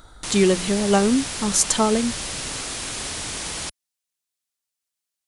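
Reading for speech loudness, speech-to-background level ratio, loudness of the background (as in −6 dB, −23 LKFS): −20.5 LKFS, 7.5 dB, −28.0 LKFS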